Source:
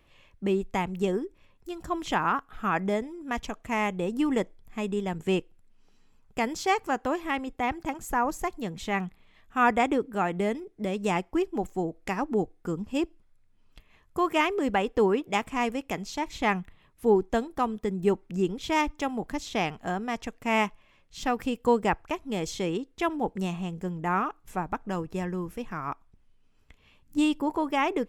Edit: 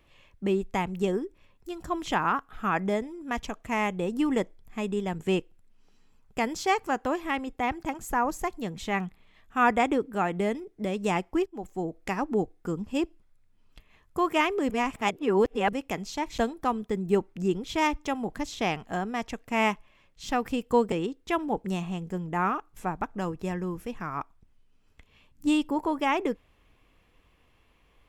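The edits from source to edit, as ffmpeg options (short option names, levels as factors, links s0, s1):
-filter_complex "[0:a]asplit=6[s0][s1][s2][s3][s4][s5];[s0]atrim=end=11.46,asetpts=PTS-STARTPTS,afade=t=out:st=11.456:d=0.004:c=hsin:silence=0.16788[s6];[s1]atrim=start=11.46:end=14.702,asetpts=PTS-STARTPTS,afade=t=in:d=0.48:silence=0.16788[s7];[s2]atrim=start=14.698:end=15.732,asetpts=PTS-STARTPTS,areverse[s8];[s3]atrim=start=15.728:end=16.382[s9];[s4]atrim=start=17.318:end=21.862[s10];[s5]atrim=start=22.628[s11];[s6][s7]concat=n=2:v=0:a=1[s12];[s12][s8]acrossfade=d=0.004:c1=hsin:c2=hsin[s13];[s13][s9]acrossfade=d=0.004:c1=hsin:c2=hsin[s14];[s14][s10]acrossfade=d=0.004:c1=hsin:c2=hsin[s15];[s15][s11]acrossfade=d=0.004:c1=hsin:c2=hsin"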